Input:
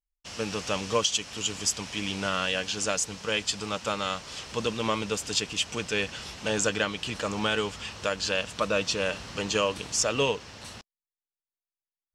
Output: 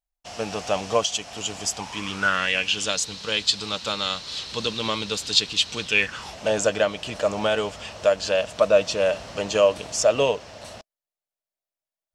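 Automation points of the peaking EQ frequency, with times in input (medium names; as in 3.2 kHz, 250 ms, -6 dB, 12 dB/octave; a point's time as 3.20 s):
peaking EQ +15 dB 0.51 oct
1.72 s 700 Hz
2.97 s 4 kHz
5.83 s 4 kHz
6.35 s 630 Hz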